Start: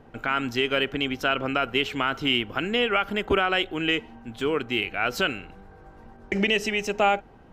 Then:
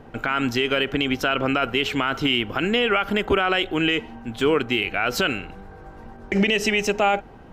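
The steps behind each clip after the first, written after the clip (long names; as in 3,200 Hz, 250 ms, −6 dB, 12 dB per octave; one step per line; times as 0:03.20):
brickwall limiter −16.5 dBFS, peak gain reduction 6 dB
level +6.5 dB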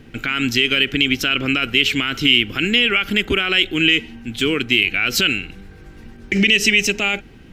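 drawn EQ curve 320 Hz 0 dB, 640 Hz −13 dB, 930 Hz −14 dB, 2,300 Hz +6 dB
level +3 dB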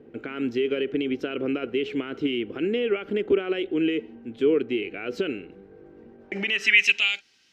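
band-pass filter sweep 440 Hz → 5,300 Hz, 0:06.12–0:07.24
level +3 dB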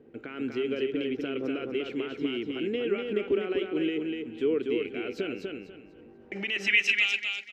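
repeating echo 245 ms, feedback 27%, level −4 dB
level −5.5 dB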